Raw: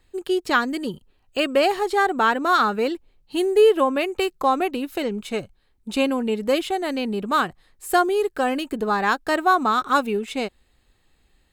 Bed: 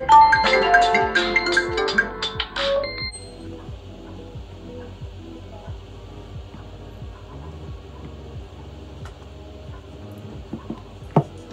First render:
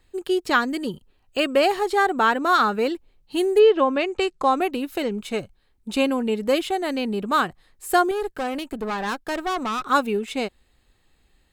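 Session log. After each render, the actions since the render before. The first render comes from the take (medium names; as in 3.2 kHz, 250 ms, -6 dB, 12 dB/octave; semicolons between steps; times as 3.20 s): 3.58–4.55 s: low-pass 4.7 kHz -> 11 kHz 24 dB/octave; 8.11–9.85 s: valve stage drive 22 dB, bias 0.65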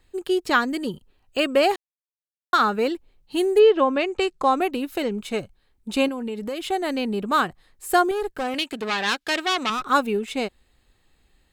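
1.76–2.53 s: mute; 6.08–6.64 s: compression, threshold -26 dBFS; 8.54–9.70 s: frequency weighting D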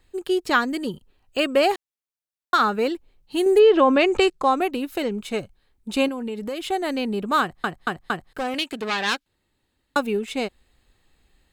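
3.46–4.30 s: level flattener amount 50%; 7.41 s: stutter in place 0.23 s, 4 plays; 9.26–9.96 s: room tone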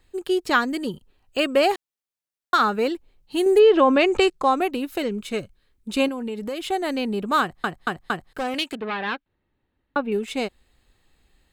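5.01–6.00 s: peaking EQ 800 Hz -8.5 dB 0.41 oct; 8.75–10.12 s: distance through air 430 m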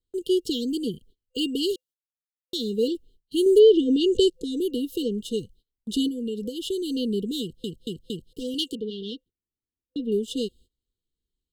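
FFT band-reject 510–2800 Hz; gate -51 dBFS, range -23 dB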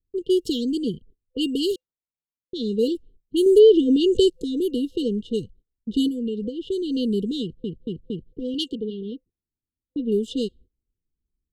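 level-controlled noise filter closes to 340 Hz, open at -22 dBFS; bass shelf 360 Hz +5 dB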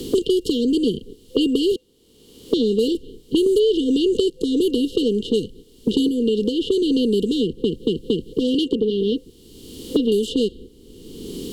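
spectral levelling over time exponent 0.6; three bands compressed up and down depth 100%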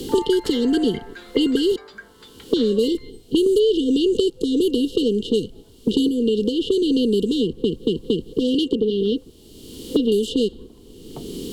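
add bed -21.5 dB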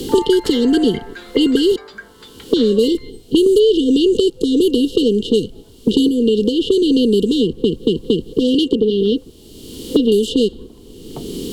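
trim +5 dB; peak limiter -2 dBFS, peak gain reduction 1.5 dB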